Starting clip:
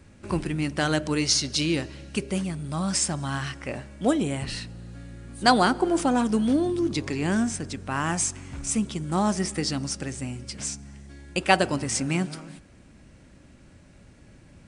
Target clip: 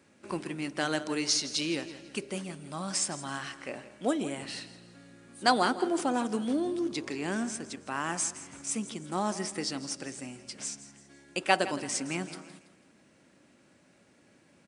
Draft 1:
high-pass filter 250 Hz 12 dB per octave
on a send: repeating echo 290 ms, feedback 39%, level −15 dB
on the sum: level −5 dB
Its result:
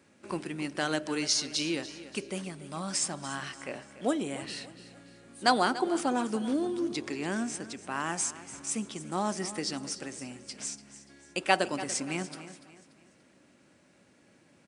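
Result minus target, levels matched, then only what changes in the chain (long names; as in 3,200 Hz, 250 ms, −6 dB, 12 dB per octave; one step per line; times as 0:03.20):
echo 125 ms late
change: repeating echo 165 ms, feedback 39%, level −15 dB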